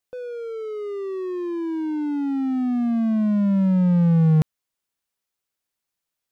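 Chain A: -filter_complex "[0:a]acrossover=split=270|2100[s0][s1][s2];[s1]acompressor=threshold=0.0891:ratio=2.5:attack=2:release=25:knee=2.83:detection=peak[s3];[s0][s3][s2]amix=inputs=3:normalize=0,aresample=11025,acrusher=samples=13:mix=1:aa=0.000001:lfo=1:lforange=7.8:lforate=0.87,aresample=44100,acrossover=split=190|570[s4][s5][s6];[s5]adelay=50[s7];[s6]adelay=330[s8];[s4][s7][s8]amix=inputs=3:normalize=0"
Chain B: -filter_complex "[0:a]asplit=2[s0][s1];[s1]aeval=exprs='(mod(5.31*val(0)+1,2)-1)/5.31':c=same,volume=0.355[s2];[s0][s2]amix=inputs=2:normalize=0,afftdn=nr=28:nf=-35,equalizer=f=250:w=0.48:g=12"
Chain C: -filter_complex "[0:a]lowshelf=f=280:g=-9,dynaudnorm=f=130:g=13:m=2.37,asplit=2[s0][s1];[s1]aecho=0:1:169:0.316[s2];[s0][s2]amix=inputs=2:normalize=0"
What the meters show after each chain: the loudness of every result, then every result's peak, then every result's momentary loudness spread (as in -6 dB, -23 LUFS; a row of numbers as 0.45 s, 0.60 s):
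-23.5 LUFS, -9.0 LUFS, -19.5 LUFS; -8.5 dBFS, -1.5 dBFS, -7.0 dBFS; 15 LU, 13 LU, 15 LU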